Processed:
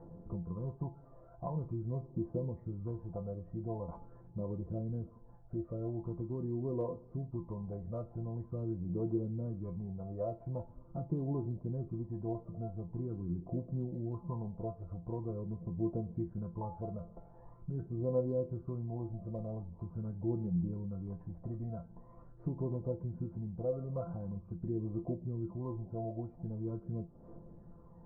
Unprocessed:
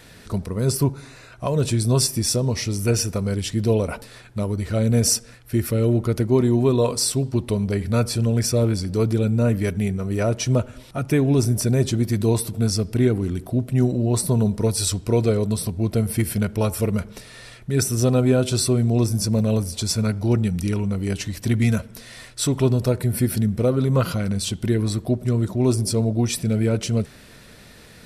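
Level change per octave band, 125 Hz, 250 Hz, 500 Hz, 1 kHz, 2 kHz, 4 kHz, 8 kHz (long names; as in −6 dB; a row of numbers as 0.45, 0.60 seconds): −17.5 dB, −17.5 dB, −17.0 dB, −16.0 dB, below −40 dB, below −40 dB, below −40 dB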